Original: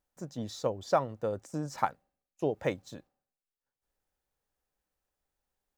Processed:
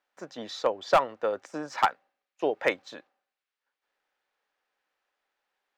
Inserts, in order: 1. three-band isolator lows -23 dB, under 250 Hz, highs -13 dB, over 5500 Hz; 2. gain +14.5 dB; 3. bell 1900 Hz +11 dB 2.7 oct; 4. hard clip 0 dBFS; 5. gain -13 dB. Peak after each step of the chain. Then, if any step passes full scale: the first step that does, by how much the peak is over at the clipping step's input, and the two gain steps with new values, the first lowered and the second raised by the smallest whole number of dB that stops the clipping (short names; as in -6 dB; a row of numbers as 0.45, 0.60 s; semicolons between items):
-12.0, +2.5, +10.0, 0.0, -13.0 dBFS; step 2, 10.0 dB; step 2 +4.5 dB, step 5 -3 dB